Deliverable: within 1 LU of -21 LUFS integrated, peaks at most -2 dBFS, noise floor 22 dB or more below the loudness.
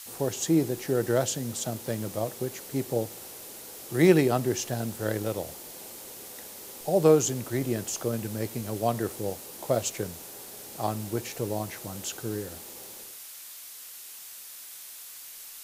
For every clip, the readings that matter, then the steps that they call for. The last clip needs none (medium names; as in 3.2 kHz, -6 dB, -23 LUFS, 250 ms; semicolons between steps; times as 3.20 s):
noise floor -44 dBFS; noise floor target -51 dBFS; loudness -28.5 LUFS; peak level -6.5 dBFS; loudness target -21.0 LUFS
-> noise reduction 7 dB, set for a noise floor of -44 dBFS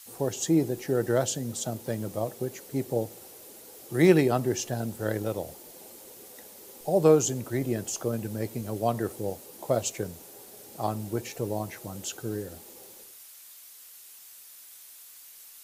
noise floor -50 dBFS; noise floor target -51 dBFS
-> noise reduction 6 dB, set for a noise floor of -50 dBFS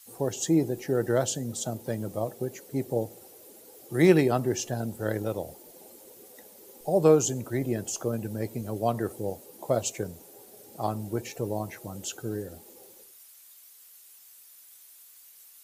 noise floor -53 dBFS; loudness -28.5 LUFS; peak level -6.5 dBFS; loudness target -21.0 LUFS
-> trim +7.5 dB; peak limiter -2 dBFS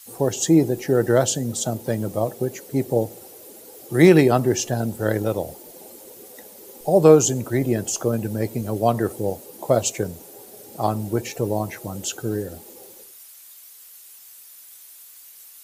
loudness -21.5 LUFS; peak level -2.0 dBFS; noise floor -46 dBFS